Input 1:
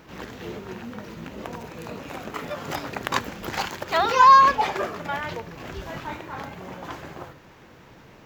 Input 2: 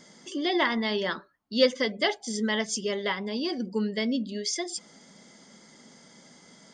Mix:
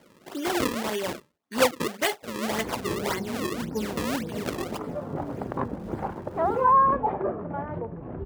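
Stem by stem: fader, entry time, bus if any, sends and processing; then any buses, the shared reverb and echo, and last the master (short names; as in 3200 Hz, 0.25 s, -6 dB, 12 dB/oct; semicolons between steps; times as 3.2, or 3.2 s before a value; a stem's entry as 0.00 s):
-2.0 dB, 2.45 s, no send, LPF 1000 Hz 12 dB/oct; tilt -4.5 dB/oct
+1.0 dB, 0.00 s, no send, decimation with a swept rate 34×, swing 160% 1.8 Hz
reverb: off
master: HPF 300 Hz 6 dB/oct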